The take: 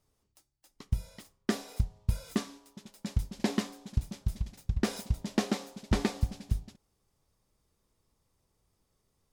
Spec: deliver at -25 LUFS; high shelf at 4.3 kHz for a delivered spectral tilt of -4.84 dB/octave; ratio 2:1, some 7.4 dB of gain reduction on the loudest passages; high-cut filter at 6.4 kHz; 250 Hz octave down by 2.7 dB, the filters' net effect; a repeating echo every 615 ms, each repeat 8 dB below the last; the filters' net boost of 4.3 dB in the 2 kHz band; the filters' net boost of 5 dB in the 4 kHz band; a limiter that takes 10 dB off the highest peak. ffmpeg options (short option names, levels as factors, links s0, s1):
-af "lowpass=6400,equalizer=f=250:t=o:g=-3.5,equalizer=f=2000:t=o:g=4,equalizer=f=4000:t=o:g=7.5,highshelf=f=4300:g=-3,acompressor=threshold=0.0158:ratio=2,alimiter=level_in=1.41:limit=0.0631:level=0:latency=1,volume=0.708,aecho=1:1:615|1230|1845|2460|3075:0.398|0.159|0.0637|0.0255|0.0102,volume=8.41"